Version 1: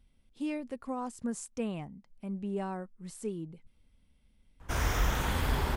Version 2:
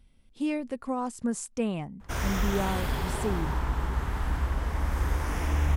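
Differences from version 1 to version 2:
speech +5.5 dB; background: entry -2.60 s

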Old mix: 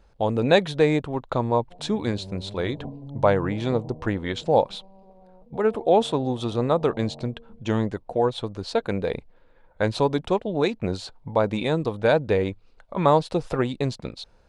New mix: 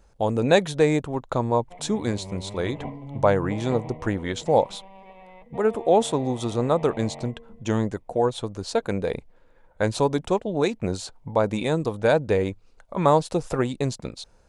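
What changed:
background: remove Gaussian low-pass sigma 12 samples; master: add resonant high shelf 5.3 kHz +7 dB, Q 1.5

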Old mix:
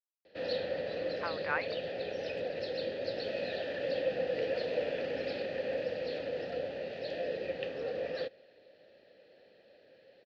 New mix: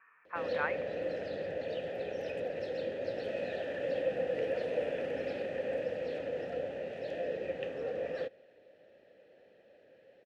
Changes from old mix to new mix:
speech: entry -0.90 s; master: remove resonant low-pass 4.5 kHz, resonance Q 4.8

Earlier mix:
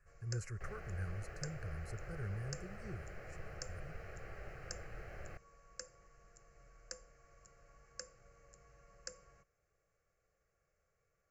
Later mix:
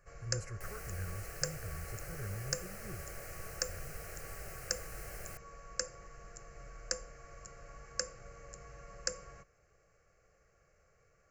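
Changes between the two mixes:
first sound +12.0 dB; second sound: remove distance through air 320 m

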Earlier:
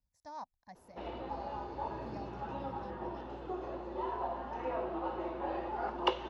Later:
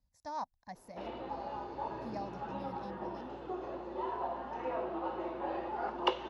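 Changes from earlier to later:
speech +6.0 dB; background: add peaking EQ 69 Hz -8 dB 1.2 oct

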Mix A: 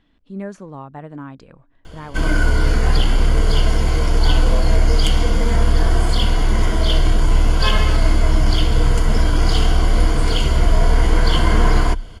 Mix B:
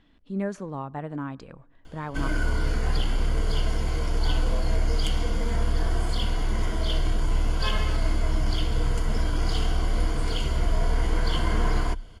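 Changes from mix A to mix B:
background -9.5 dB; reverb: on, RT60 0.45 s

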